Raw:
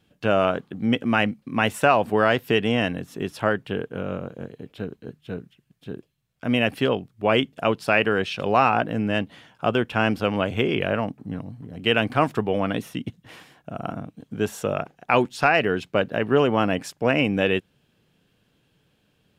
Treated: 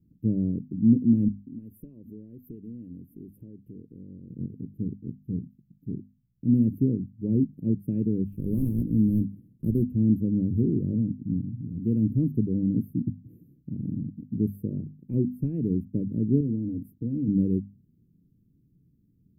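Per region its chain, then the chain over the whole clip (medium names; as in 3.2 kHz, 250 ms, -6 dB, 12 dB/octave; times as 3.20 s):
1.28–4.29 s: compression 2.5:1, threshold -35 dBFS + peaking EQ 140 Hz -9.5 dB 2.2 oct
8.32–9.90 s: block-companded coder 3-bit + low-pass 8.8 kHz
16.40–17.28 s: compression 3:1, threshold -22 dBFS + comb of notches 190 Hz
whole clip: inverse Chebyshev band-stop 690–7000 Hz, stop band 50 dB; tilt shelf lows +5.5 dB, about 1.1 kHz; hum notches 50/100/150/200/250 Hz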